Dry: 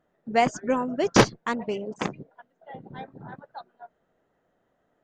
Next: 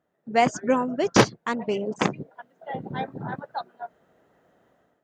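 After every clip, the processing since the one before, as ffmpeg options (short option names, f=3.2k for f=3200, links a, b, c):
-af "highpass=62,dynaudnorm=f=150:g=5:m=13dB,volume=-4dB"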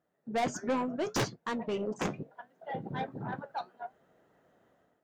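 -af "asoftclip=type=tanh:threshold=-21.5dB,flanger=delay=5.5:depth=6.4:regen=-68:speed=0.71:shape=triangular"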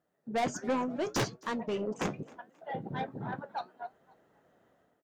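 -filter_complex "[0:a]asplit=3[a][b][c];[b]adelay=266,afreqshift=63,volume=-23dB[d];[c]adelay=532,afreqshift=126,volume=-33.2dB[e];[a][d][e]amix=inputs=3:normalize=0"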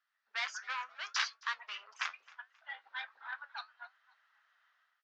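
-af "asuperpass=centerf=2600:order=8:qfactor=0.61,volume=4dB"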